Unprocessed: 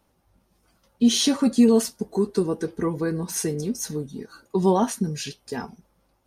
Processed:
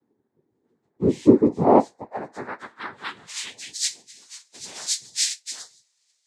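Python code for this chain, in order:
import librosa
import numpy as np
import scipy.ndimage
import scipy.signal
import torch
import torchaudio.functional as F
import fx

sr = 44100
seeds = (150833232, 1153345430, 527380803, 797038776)

y = fx.freq_snap(x, sr, grid_st=4)
y = fx.filter_sweep_bandpass(y, sr, from_hz=280.0, to_hz=5000.0, start_s=1.35, end_s=3.95, q=5.4)
y = fx.noise_vocoder(y, sr, seeds[0], bands=6)
y = y * librosa.db_to_amplitude(8.0)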